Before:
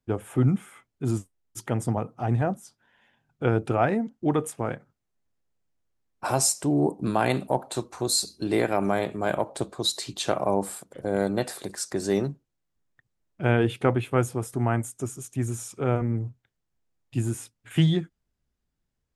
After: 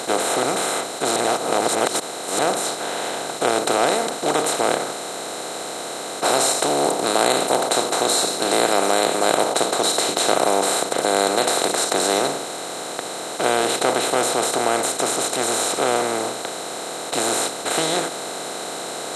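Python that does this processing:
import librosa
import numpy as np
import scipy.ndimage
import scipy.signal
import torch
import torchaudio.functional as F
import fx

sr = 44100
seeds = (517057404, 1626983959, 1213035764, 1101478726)

y = fx.edit(x, sr, fx.reverse_span(start_s=1.16, length_s=1.23), tone=tone)
y = fx.bin_compress(y, sr, power=0.2)
y = scipy.signal.sosfilt(scipy.signal.cheby1(2, 1.0, 490.0, 'highpass', fs=sr, output='sos'), y)
y = fx.peak_eq(y, sr, hz=5000.0, db=-5.0, octaves=0.25)
y = y * librosa.db_to_amplitude(-1.0)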